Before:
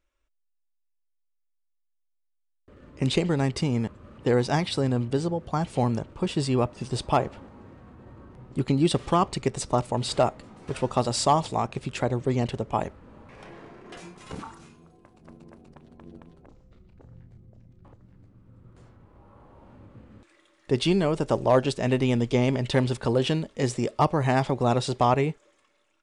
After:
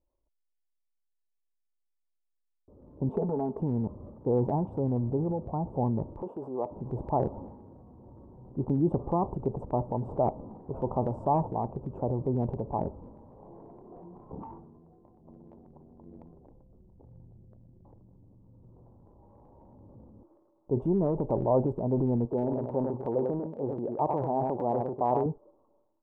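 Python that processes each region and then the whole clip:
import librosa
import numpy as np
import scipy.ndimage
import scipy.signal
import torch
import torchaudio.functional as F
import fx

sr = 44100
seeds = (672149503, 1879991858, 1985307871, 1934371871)

y = fx.chain(x, sr, fx.highpass(hz=380.0, slope=6),
    fx.high_shelf(hz=5700.0, db=-11.5),
    fx.comb(ms=4.6, depth=0.9), at=(3.09, 3.6))
y = fx.chain(y, sr, fx.cvsd(bps=64000),
    fx.highpass(hz=430.0, slope=12), at=(6.22, 6.71))
y = fx.chain(y, sr, fx.bandpass_q(hz=730.0, q=0.53),
    fx.echo_single(ms=98, db=-9.0), at=(22.25, 25.26))
y = scipy.signal.sosfilt(scipy.signal.ellip(4, 1.0, 50, 940.0, 'lowpass', fs=sr, output='sos'), y)
y = fx.transient(y, sr, attack_db=-1, sustain_db=8)
y = y * 10.0 ** (-3.5 / 20.0)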